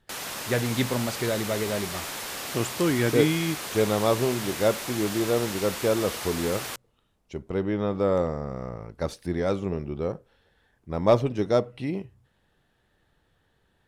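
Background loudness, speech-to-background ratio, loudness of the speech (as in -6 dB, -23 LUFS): -33.0 LUFS, 6.0 dB, -27.0 LUFS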